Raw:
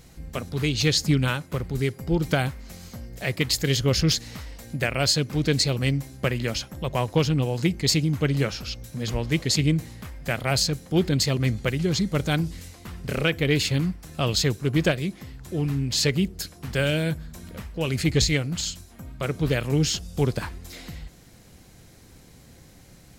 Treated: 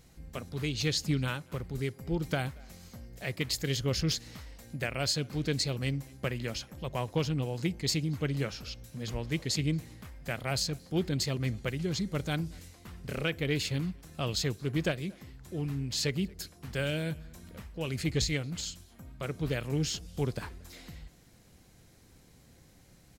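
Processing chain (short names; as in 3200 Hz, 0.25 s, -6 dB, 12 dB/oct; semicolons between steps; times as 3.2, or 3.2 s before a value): speakerphone echo 0.23 s, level -23 dB; gain -8.5 dB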